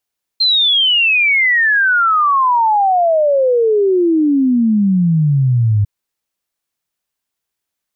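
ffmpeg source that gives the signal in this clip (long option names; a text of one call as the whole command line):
ffmpeg -f lavfi -i "aevalsrc='0.335*clip(min(t,5.45-t)/0.01,0,1)*sin(2*PI*4200*5.45/log(100/4200)*(exp(log(100/4200)*t/5.45)-1))':duration=5.45:sample_rate=44100" out.wav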